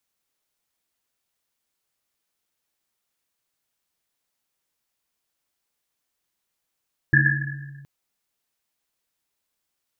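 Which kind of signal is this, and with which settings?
Risset drum length 0.72 s, pitch 140 Hz, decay 1.86 s, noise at 1700 Hz, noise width 130 Hz, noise 55%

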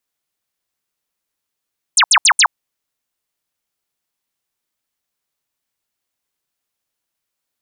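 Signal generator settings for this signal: burst of laser zaps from 10000 Hz, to 780 Hz, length 0.07 s sine, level -7 dB, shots 4, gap 0.07 s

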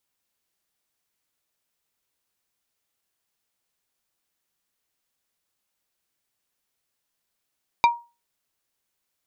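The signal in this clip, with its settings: wood hit plate, lowest mode 945 Hz, decay 0.29 s, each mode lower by 6 dB, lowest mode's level -10 dB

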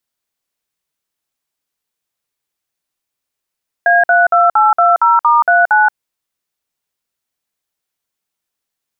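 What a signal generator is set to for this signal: DTMF "A32820*39", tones 0.177 s, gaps 54 ms, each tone -9.5 dBFS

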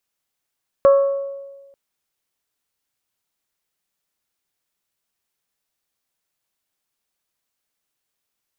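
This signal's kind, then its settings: glass hit bell, lowest mode 554 Hz, modes 4, decay 1.32 s, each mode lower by 11 dB, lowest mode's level -7 dB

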